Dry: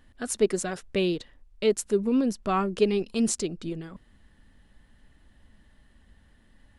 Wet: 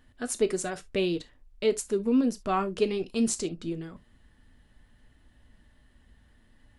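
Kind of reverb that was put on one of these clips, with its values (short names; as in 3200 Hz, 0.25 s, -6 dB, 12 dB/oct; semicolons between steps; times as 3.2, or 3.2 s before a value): non-linear reverb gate 90 ms falling, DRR 9.5 dB; gain -2 dB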